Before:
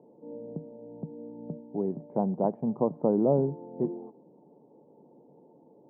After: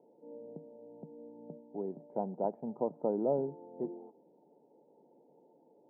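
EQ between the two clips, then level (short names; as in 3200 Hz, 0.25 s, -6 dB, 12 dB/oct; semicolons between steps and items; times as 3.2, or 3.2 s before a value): band-pass 750 Hz, Q 0.56; Butterworth band-stop 1100 Hz, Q 6.7; -5.0 dB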